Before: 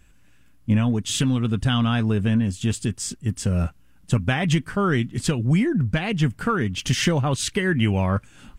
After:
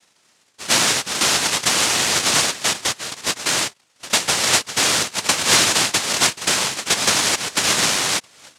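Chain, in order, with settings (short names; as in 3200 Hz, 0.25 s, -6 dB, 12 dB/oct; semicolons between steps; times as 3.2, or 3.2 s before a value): bin magnitudes rounded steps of 15 dB; pre-echo 0.1 s -18 dB; noise vocoder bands 1; gain +3 dB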